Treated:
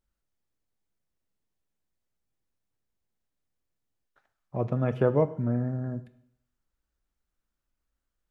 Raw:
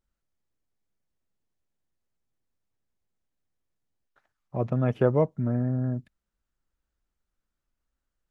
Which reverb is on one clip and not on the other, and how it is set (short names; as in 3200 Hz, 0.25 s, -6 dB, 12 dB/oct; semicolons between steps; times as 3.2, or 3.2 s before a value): plate-style reverb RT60 0.67 s, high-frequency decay 0.95×, DRR 11 dB; gain -1 dB